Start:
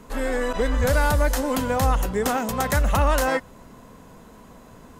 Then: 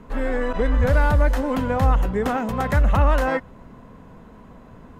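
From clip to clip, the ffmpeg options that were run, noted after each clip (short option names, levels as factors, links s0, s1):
-af "bass=f=250:g=4,treble=f=4000:g=-15"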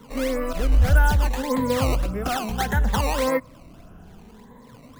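-filter_complex "[0:a]afftfilt=real='re*pow(10,13/40*sin(2*PI*(0.99*log(max(b,1)*sr/1024/100)/log(2)-(0.64)*(pts-256)/sr)))':imag='im*pow(10,13/40*sin(2*PI*(0.99*log(max(b,1)*sr/1024/100)/log(2)-(0.64)*(pts-256)/sr)))':win_size=1024:overlap=0.75,acrossover=split=180|350|1700[s0][s1][s2][s3];[s2]acrusher=samples=15:mix=1:aa=0.000001:lfo=1:lforange=24:lforate=1.7[s4];[s0][s1][s4][s3]amix=inputs=4:normalize=0,volume=0.668"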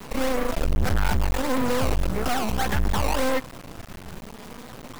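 -af "asoftclip=type=tanh:threshold=0.0631,acrusher=bits=5:dc=4:mix=0:aa=0.000001,volume=2.66"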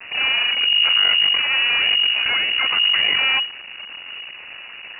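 -af "lowpass=f=2500:t=q:w=0.5098,lowpass=f=2500:t=q:w=0.6013,lowpass=f=2500:t=q:w=0.9,lowpass=f=2500:t=q:w=2.563,afreqshift=-2900,volume=1.5"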